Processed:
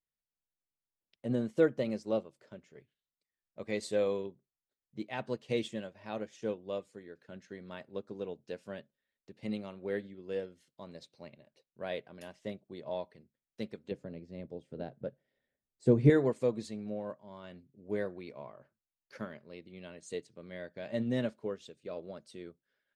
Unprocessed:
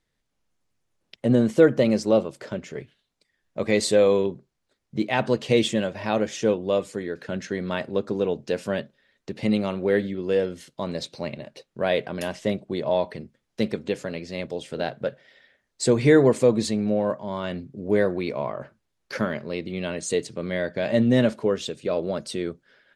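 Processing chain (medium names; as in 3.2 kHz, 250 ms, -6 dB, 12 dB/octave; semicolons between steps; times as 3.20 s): 13.91–16.10 s: tilt shelf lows +9 dB, about 710 Hz; upward expansion 1.5:1, over -38 dBFS; trim -8.5 dB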